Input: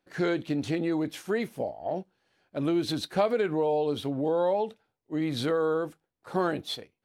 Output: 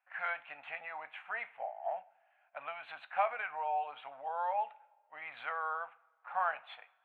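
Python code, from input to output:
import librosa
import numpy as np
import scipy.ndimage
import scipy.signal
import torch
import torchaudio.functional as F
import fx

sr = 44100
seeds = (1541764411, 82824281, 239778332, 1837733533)

y = scipy.signal.sosfilt(scipy.signal.ellip(3, 1.0, 40, [740.0, 2600.0], 'bandpass', fs=sr, output='sos'), x)
y = fx.rev_double_slope(y, sr, seeds[0], early_s=0.45, late_s=1.9, knee_db=-18, drr_db=14.0)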